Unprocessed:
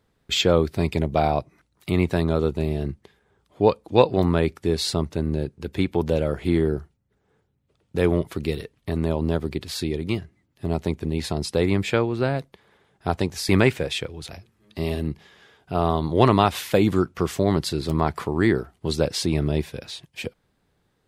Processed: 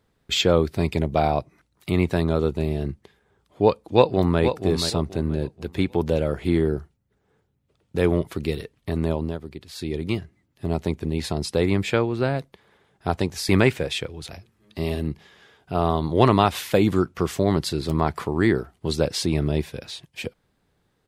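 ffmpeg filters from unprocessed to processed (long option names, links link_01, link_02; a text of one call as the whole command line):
ffmpeg -i in.wav -filter_complex "[0:a]asplit=2[link_01][link_02];[link_02]afade=type=in:start_time=3.84:duration=0.01,afade=type=out:start_time=4.41:duration=0.01,aecho=0:1:480|960|1440|1920:0.375837|0.112751|0.0338254|0.0101476[link_03];[link_01][link_03]amix=inputs=2:normalize=0,asplit=3[link_04][link_05][link_06];[link_04]atrim=end=9.38,asetpts=PTS-STARTPTS,afade=type=out:start_time=9.12:duration=0.26:silence=0.334965[link_07];[link_05]atrim=start=9.38:end=9.72,asetpts=PTS-STARTPTS,volume=-9.5dB[link_08];[link_06]atrim=start=9.72,asetpts=PTS-STARTPTS,afade=type=in:duration=0.26:silence=0.334965[link_09];[link_07][link_08][link_09]concat=n=3:v=0:a=1" out.wav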